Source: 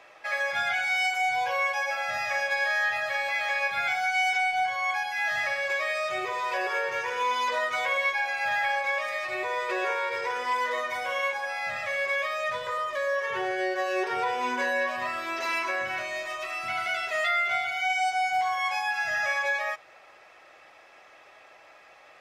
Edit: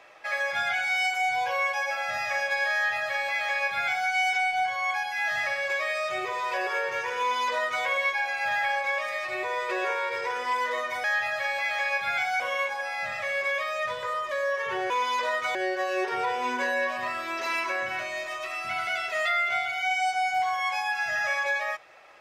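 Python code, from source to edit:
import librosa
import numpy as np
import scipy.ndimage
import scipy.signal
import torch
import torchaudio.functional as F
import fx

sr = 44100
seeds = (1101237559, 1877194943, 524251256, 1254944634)

y = fx.edit(x, sr, fx.duplicate(start_s=2.74, length_s=1.36, to_s=11.04),
    fx.duplicate(start_s=7.19, length_s=0.65, to_s=13.54), tone=tone)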